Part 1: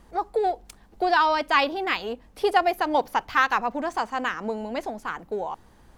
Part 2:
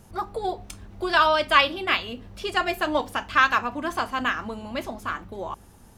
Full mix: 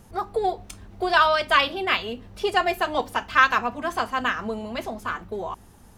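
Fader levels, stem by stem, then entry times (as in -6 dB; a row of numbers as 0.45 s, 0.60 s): -5.5 dB, -0.5 dB; 0.00 s, 0.00 s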